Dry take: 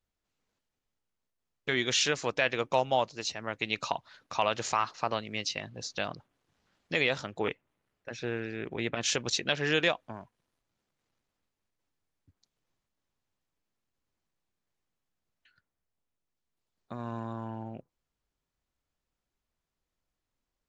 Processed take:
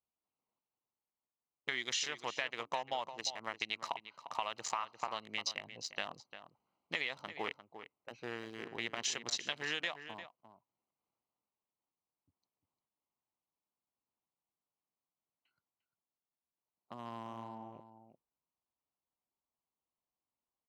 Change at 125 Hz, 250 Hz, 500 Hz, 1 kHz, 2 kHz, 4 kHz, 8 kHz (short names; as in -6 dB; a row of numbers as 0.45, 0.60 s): -17.0, -13.0, -13.5, -7.5, -7.5, -6.5, -6.5 dB